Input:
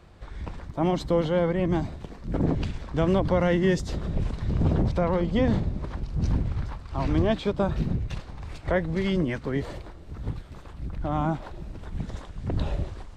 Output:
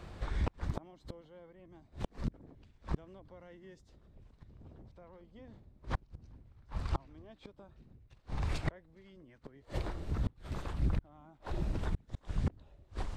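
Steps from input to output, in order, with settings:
dynamic equaliser 170 Hz, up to −6 dB, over −42 dBFS, Q 4.7
gate with flip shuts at −24 dBFS, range −34 dB
level +3.5 dB

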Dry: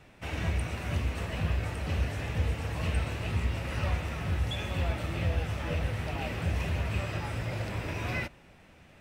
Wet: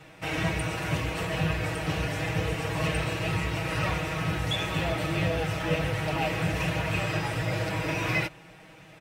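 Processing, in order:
high-pass filter 98 Hz 6 dB per octave
parametric band 220 Hz −5.5 dB 0.35 octaves
comb filter 6.3 ms, depth 85%
level +5 dB

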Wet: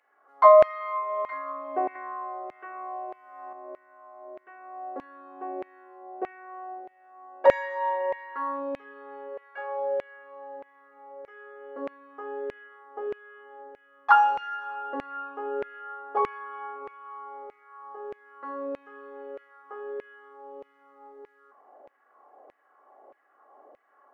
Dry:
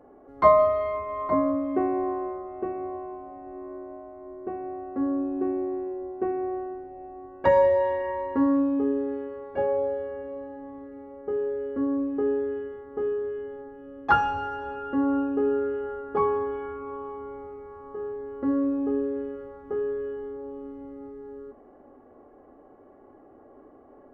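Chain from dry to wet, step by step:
auto-filter high-pass saw down 1.6 Hz 550–2,200 Hz
0:01.95–0:03.53: multiband upward and downward compressor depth 70%
level −2 dB

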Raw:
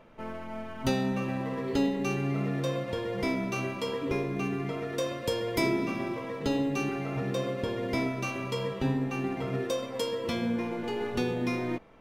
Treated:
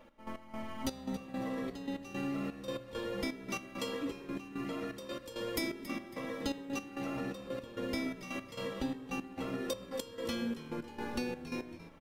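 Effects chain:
high-shelf EQ 4,700 Hz +8 dB
comb filter 3.6 ms, depth 66%
downward compressor 3 to 1, threshold −29 dBFS, peak gain reduction 7.5 dB
gate pattern "x..x..xxx" 168 BPM −12 dB
echo with shifted repeats 276 ms, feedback 36%, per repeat −77 Hz, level −14.5 dB
level −4.5 dB

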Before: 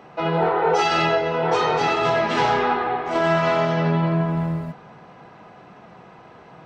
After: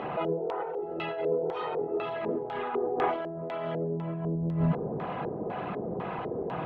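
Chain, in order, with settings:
spectral envelope exaggerated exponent 1.5
compressor whose output falls as the input rises −32 dBFS, ratio −1
auto-filter low-pass square 2 Hz 430–3,200 Hz

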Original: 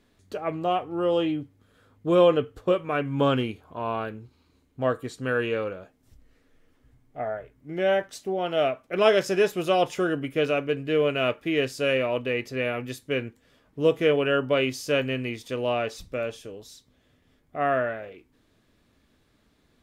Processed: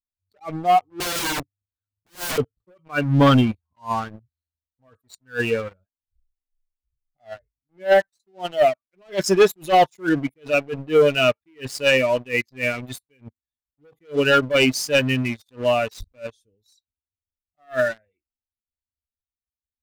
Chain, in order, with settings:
spectral dynamics exaggerated over time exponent 2
leveller curve on the samples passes 3
0:01.00–0:02.38: wrap-around overflow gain 24.5 dB
level that may rise only so fast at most 280 dB per second
level +4 dB

